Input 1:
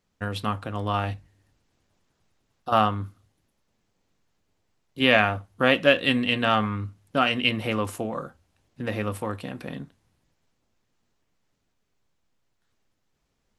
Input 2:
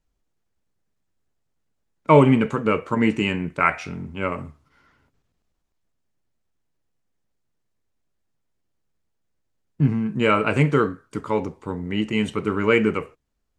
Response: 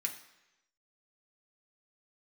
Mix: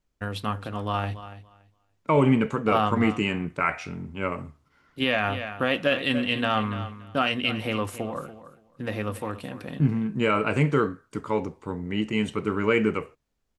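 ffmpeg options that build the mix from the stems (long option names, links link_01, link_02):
-filter_complex "[0:a]agate=range=-8dB:threshold=-51dB:ratio=16:detection=peak,volume=-1.5dB,asplit=2[link_01][link_02];[link_02]volume=-14dB[link_03];[1:a]volume=-3dB[link_04];[link_03]aecho=0:1:285|570|855:1|0.17|0.0289[link_05];[link_01][link_04][link_05]amix=inputs=3:normalize=0,alimiter=limit=-10.5dB:level=0:latency=1:release=17"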